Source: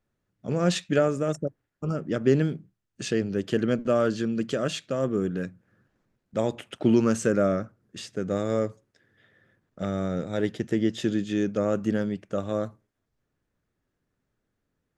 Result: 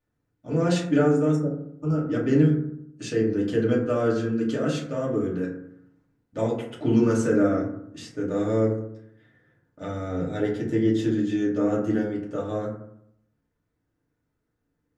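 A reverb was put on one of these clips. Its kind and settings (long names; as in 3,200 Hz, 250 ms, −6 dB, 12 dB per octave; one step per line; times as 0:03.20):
feedback delay network reverb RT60 0.73 s, low-frequency decay 1.25×, high-frequency decay 0.35×, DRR −6 dB
level −7 dB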